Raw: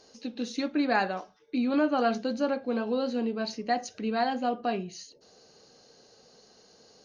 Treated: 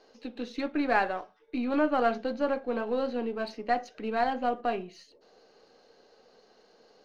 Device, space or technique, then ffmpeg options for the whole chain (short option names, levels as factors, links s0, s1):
crystal radio: -af "highpass=280,lowpass=2900,aeval=exprs='if(lt(val(0),0),0.708*val(0),val(0))':c=same,volume=1.26"